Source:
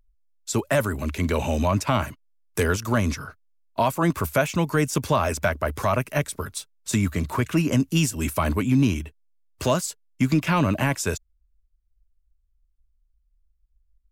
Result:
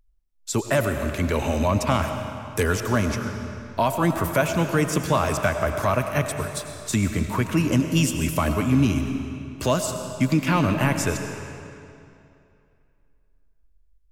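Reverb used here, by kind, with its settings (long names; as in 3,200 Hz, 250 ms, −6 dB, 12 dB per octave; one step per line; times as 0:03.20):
comb and all-pass reverb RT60 2.6 s, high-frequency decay 0.85×, pre-delay 60 ms, DRR 6 dB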